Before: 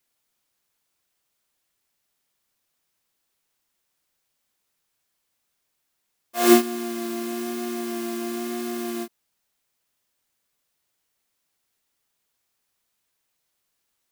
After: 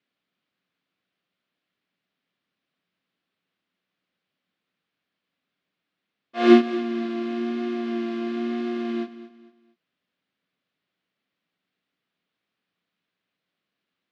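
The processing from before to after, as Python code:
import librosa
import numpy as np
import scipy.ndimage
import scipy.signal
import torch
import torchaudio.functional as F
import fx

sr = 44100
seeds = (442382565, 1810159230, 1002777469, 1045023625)

y = fx.cabinet(x, sr, low_hz=120.0, low_slope=12, high_hz=3700.0, hz=(180.0, 270.0, 890.0), db=(10, 6, -7))
y = fx.echo_feedback(y, sr, ms=227, feedback_pct=34, wet_db=-15)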